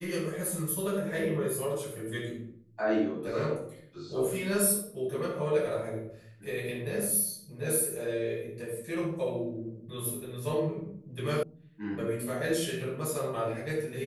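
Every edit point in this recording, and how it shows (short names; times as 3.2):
11.43 sound cut off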